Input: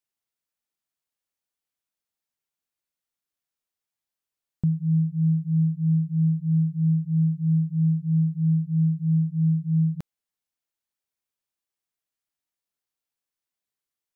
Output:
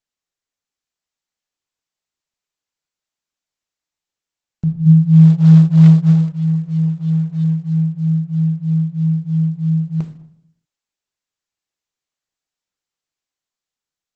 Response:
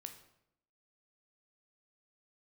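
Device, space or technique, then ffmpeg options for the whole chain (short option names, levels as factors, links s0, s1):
speakerphone in a meeting room: -filter_complex "[0:a]asplit=3[s0][s1][s2];[s0]afade=t=out:st=4.85:d=0.02[s3];[s1]asubboost=boost=4.5:cutoff=240,afade=t=in:st=4.85:d=0.02,afade=t=out:st=6.1:d=0.02[s4];[s2]afade=t=in:st=6.1:d=0.02[s5];[s3][s4][s5]amix=inputs=3:normalize=0[s6];[1:a]atrim=start_sample=2205[s7];[s6][s7]afir=irnorm=-1:irlink=0,dynaudnorm=f=170:g=11:m=1.68,volume=1.78" -ar 48000 -c:a libopus -b:a 12k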